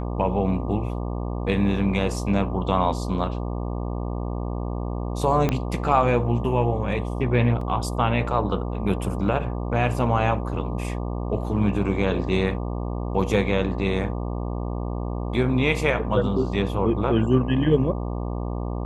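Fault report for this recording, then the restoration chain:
buzz 60 Hz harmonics 20 -28 dBFS
5.49 pop -9 dBFS
7.61 gap 3.7 ms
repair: de-click; de-hum 60 Hz, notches 20; interpolate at 7.61, 3.7 ms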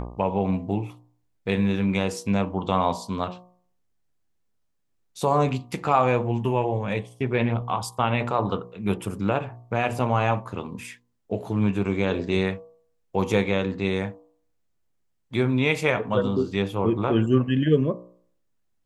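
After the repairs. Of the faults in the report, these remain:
5.49 pop

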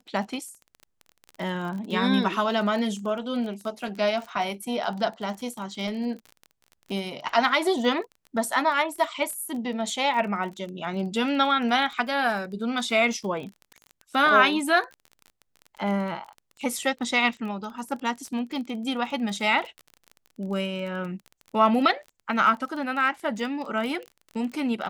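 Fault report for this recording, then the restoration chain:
crackle 27/s -33 dBFS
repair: de-click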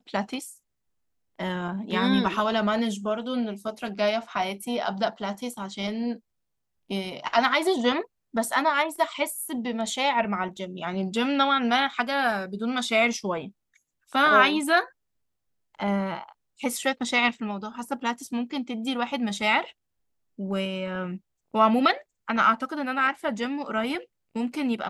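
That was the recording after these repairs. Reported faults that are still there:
none

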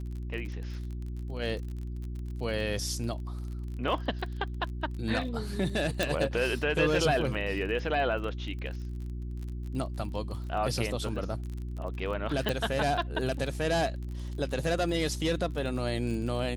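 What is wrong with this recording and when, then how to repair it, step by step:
crackle 34/s -37 dBFS
hum 60 Hz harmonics 6 -36 dBFS
6.03 pop
12.49 pop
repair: de-click; de-hum 60 Hz, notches 6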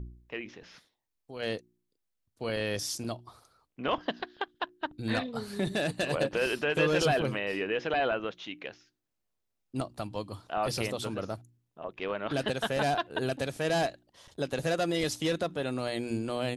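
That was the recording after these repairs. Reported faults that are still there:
12.49 pop

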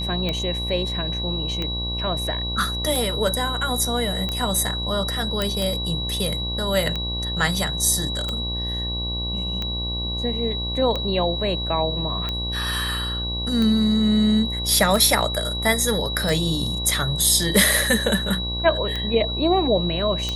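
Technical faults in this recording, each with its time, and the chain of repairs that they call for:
buzz 60 Hz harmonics 19 -29 dBFS
tick 45 rpm -13 dBFS
tone 3900 Hz -27 dBFS
5.42 pop -8 dBFS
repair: de-click; de-hum 60 Hz, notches 19; notch 3900 Hz, Q 30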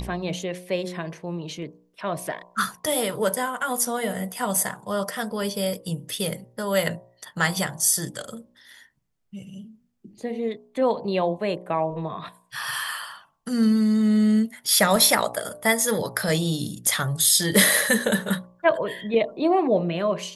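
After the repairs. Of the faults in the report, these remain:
none

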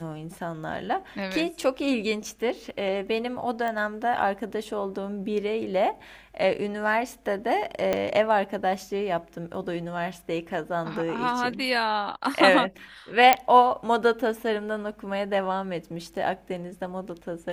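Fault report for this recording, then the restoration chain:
3.68 pop -19 dBFS
7.93 pop -11 dBFS
13.33 pop -3 dBFS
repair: de-click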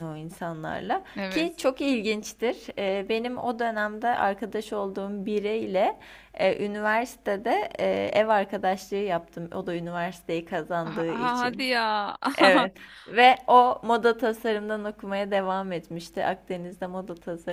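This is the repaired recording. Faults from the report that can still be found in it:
7.93 pop

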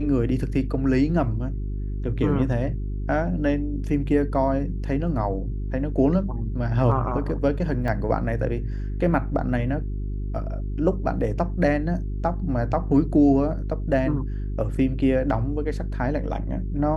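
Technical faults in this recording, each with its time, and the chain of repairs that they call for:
hum 50 Hz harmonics 8 -28 dBFS
7.88 gap 2.1 ms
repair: de-hum 50 Hz, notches 8; interpolate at 7.88, 2.1 ms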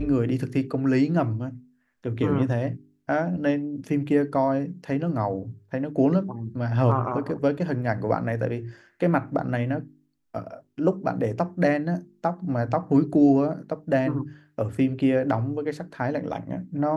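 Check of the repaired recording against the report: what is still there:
none

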